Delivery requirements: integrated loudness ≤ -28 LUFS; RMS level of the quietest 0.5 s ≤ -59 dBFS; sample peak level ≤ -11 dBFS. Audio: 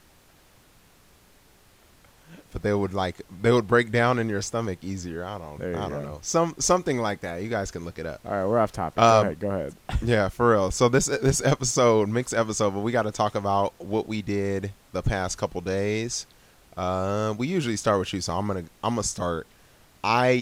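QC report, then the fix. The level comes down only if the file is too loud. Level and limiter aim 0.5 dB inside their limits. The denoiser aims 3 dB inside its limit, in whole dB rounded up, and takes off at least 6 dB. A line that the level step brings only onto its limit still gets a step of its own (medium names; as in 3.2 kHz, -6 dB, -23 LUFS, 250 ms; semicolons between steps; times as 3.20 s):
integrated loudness -25.0 LUFS: fail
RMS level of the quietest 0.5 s -57 dBFS: fail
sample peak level -5.5 dBFS: fail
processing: trim -3.5 dB; peak limiter -11.5 dBFS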